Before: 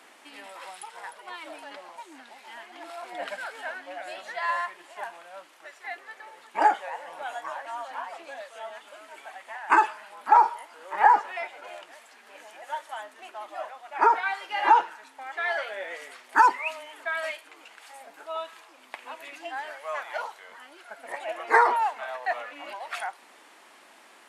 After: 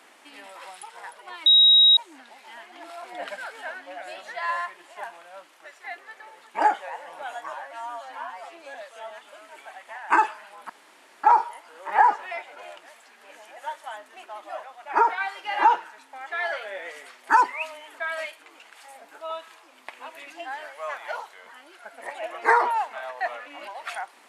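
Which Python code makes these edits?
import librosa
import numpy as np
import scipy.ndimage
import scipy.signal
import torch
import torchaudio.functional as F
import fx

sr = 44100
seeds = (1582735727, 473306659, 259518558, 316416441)

y = fx.edit(x, sr, fx.bleep(start_s=1.46, length_s=0.51, hz=3810.0, db=-11.5),
    fx.stretch_span(start_s=7.53, length_s=0.81, factor=1.5),
    fx.insert_room_tone(at_s=10.29, length_s=0.54), tone=tone)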